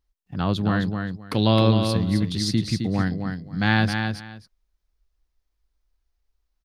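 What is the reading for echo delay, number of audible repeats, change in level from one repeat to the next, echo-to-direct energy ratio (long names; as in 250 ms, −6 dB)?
263 ms, 2, −14.5 dB, −6.0 dB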